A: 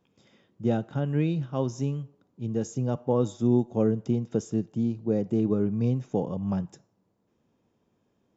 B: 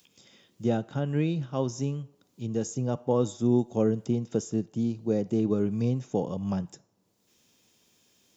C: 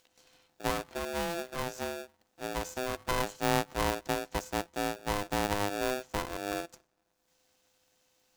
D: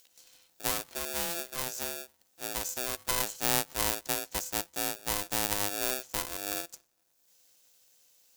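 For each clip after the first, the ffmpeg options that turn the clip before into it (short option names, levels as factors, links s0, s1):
-filter_complex "[0:a]bass=f=250:g=-2,treble=f=4000:g=5,acrossover=split=2400[s0][s1];[s1]acompressor=mode=upward:threshold=0.00316:ratio=2.5[s2];[s0][s2]amix=inputs=2:normalize=0"
-af "aeval=exprs='if(lt(val(0),0),0.251*val(0),val(0))':c=same,aeval=exprs='val(0)*sgn(sin(2*PI*510*n/s))':c=same,volume=0.708"
-af "crystalizer=i=5:c=0,volume=0.501"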